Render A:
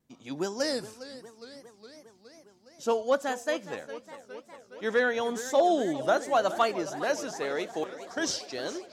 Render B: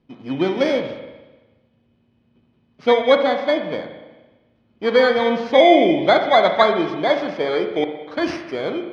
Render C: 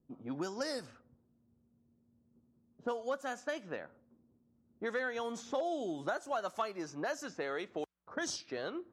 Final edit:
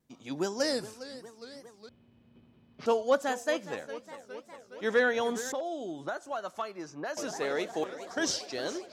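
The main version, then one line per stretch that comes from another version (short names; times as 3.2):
A
1.89–2.86 from B
5.52–7.17 from C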